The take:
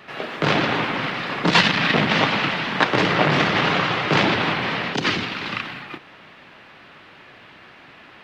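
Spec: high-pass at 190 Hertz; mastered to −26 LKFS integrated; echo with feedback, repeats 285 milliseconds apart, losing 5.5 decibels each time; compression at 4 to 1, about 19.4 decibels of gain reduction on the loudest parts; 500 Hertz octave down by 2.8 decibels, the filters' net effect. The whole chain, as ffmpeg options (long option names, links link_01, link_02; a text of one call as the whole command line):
ffmpeg -i in.wav -af "highpass=190,equalizer=frequency=500:width_type=o:gain=-3.5,acompressor=threshold=-36dB:ratio=4,aecho=1:1:285|570|855|1140|1425|1710|1995:0.531|0.281|0.149|0.079|0.0419|0.0222|0.0118,volume=9dB" out.wav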